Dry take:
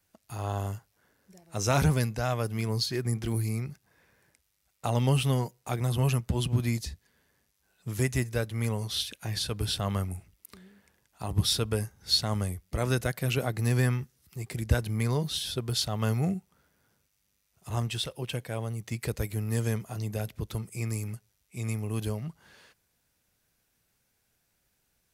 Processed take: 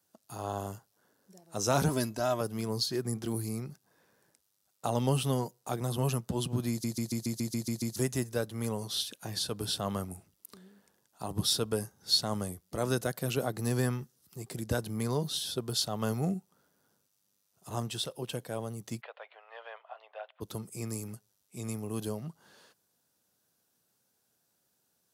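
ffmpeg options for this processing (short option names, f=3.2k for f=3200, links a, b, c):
-filter_complex "[0:a]asettb=1/sr,asplit=3[a][b][c];[a]atrim=end=1.884[d];[b]atrim=start=1.88:end=2.41,asetpts=PTS-STARTPTS,afade=t=in:d=0.004:c=qsin,afade=t=out:st=0.526:d=0.004:c=qsin,aecho=1:1:3.1:0.65,atrim=end_sample=23373[e];[c]atrim=start=2.406[f];[d][e]acrossfade=d=0.004:c1=hsin:c2=qsin[g];[g][f]acrossfade=d=0.004:c1=qsin:c2=hsin,asplit=3[h][i][j];[h]afade=t=out:st=19:d=0.02[k];[i]asuperpass=centerf=1400:order=12:qfactor=0.52,afade=t=in:st=19:d=0.02,afade=t=out:st=20.4:d=0.02[l];[j]afade=t=in:st=20.4:d=0.02[m];[k][l][m]amix=inputs=3:normalize=0,asplit=10[n][o][p][q][r][s][t][u][v][w];[n]atrim=end=6.842[x];[o]atrim=start=6.698:end=6.842[y];[p]atrim=start=6.698:end=6.842[z];[q]atrim=start=6.698:end=6.842[aa];[r]atrim=start=6.698:end=6.842[ab];[s]atrim=start=6.698:end=6.842[ac];[t]atrim=start=6.698:end=6.842[ad];[u]atrim=start=6.698:end=6.842[ae];[v]atrim=start=6.698:end=6.842[af];[w]atrim=start=7.958[ag];[x][y]acrossfade=d=0.004:c1=hsin:c2=hsin[ah];[ah][z]acrossfade=d=0.004:c1=hsin:c2=hsin[ai];[ai][aa]acrossfade=d=0.004:c1=hsin:c2=hsin[aj];[aj][ab]acrossfade=d=0.004:c1=hsin:c2=hsin[ak];[ak][ac]acrossfade=d=0.004:c1=hsin:c2=hsin[al];[al][ad]acrossfade=d=0.004:c1=hsin:c2=hsin[am];[am][ae]acrossfade=d=0.004:c1=hsin:c2=hsin[an];[an][af]acrossfade=d=0.004:c1=hsin:c2=hsin[ao];[ao][ag]acrossfade=d=0.004:c1=hsin:c2=hsin,highpass=170,equalizer=f=2.2k:w=1.8:g=-10.5"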